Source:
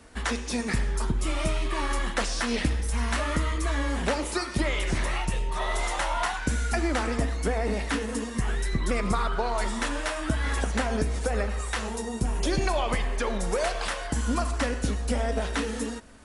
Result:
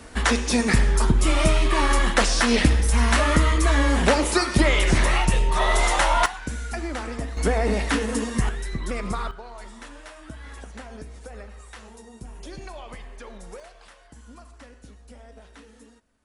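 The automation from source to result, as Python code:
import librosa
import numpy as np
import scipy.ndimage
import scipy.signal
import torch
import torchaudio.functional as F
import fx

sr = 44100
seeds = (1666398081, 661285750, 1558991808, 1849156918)

y = fx.gain(x, sr, db=fx.steps((0.0, 8.0), (6.26, -4.0), (7.37, 5.0), (8.49, -2.5), (9.31, -13.0), (13.6, -19.5)))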